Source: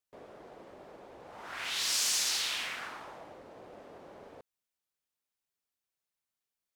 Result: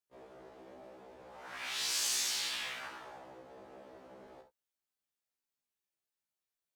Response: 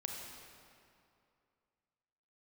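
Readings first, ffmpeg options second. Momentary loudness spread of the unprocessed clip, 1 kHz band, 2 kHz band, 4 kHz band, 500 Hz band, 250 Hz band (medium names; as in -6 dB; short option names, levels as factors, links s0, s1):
21 LU, -3.5 dB, -3.5 dB, -3.5 dB, -2.5 dB, -2.5 dB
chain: -filter_complex "[1:a]atrim=start_sample=2205,atrim=end_sample=3528[s0];[0:a][s0]afir=irnorm=-1:irlink=0,afftfilt=real='re*1.73*eq(mod(b,3),0)':imag='im*1.73*eq(mod(b,3),0)':win_size=2048:overlap=0.75,volume=1.12"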